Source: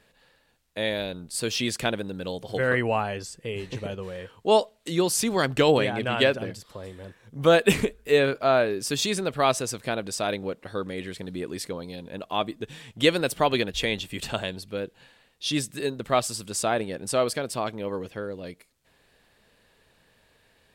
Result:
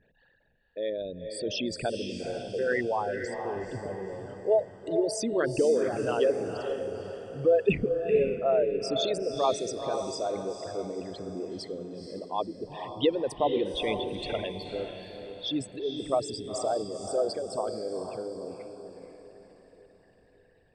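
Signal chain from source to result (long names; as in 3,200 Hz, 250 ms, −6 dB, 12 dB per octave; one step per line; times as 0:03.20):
spectral envelope exaggerated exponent 3
low-pass filter 6,100 Hz 12 dB per octave
on a send: feedback delay with all-pass diffusion 480 ms, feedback 45%, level −6.5 dB
on the sum: level −4 dB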